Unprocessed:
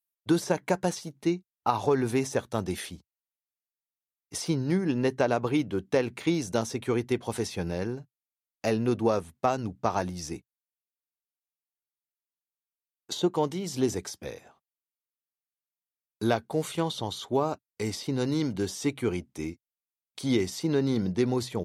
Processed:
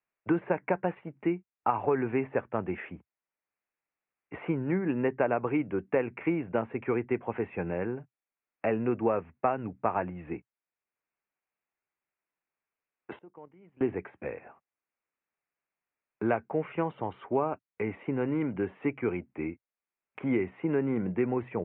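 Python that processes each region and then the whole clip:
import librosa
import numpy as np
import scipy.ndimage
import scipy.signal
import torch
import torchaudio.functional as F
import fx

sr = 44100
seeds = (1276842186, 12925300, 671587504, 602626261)

y = fx.chain(x, sr, fx.gate_flip(shuts_db=-27.0, range_db=-27),
    fx.level_steps(step_db=9), at=(13.16, 13.81))
y = scipy.signal.sosfilt(scipy.signal.butter(12, 2600.0, 'lowpass', fs=sr, output='sos'), y)
y = fx.low_shelf(y, sr, hz=190.0, db=-8.0)
y = fx.band_squash(y, sr, depth_pct=40)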